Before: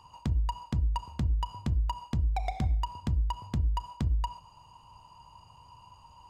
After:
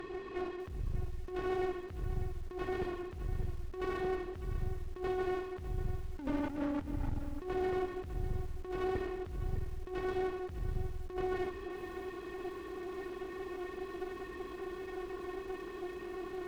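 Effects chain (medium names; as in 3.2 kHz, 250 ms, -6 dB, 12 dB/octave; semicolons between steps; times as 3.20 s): dynamic bell 300 Hz, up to +5 dB, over -45 dBFS, Q 0.71; high-pass 200 Hz 12 dB/octave; wide varispeed 0.382×; compressor with a negative ratio -43 dBFS, ratio -1; on a send at -22 dB: reverberation RT60 0.45 s, pre-delay 75 ms; on the sum: one-sided clip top -54 dBFS; bit-crushed delay 601 ms, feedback 35%, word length 10-bit, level -12 dB; trim +10 dB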